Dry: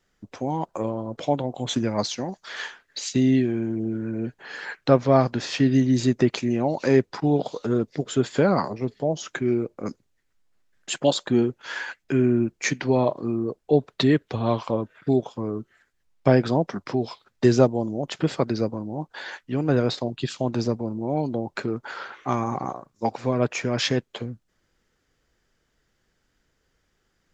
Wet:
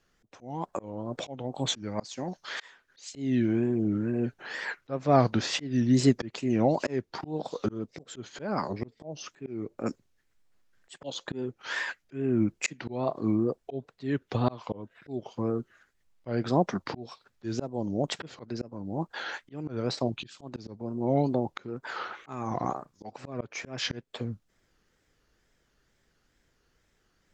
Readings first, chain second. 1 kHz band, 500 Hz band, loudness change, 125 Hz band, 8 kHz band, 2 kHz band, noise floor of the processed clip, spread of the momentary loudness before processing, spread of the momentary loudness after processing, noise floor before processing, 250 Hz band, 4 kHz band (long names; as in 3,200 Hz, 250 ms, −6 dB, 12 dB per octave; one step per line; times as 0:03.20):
−5.0 dB, −8.5 dB, −6.5 dB, −6.5 dB, can't be measured, −4.5 dB, −72 dBFS, 12 LU, 15 LU, −72 dBFS, −6.5 dB, −5.0 dB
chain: tape wow and flutter 140 cents
volume swells 405 ms